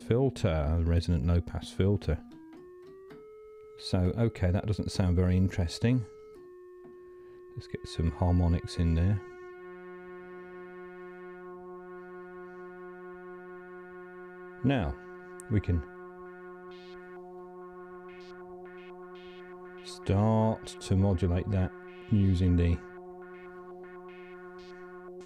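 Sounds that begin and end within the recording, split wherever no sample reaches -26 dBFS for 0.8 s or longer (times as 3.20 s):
3.87–5.99 s
7.75–9.16 s
14.65–15.79 s
20.07–22.75 s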